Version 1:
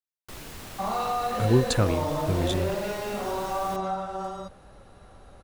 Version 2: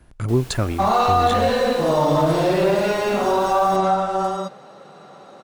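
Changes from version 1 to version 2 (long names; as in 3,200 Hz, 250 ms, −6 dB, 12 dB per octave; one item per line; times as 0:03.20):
speech: entry −1.20 s
second sound +9.5 dB
reverb: on, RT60 0.60 s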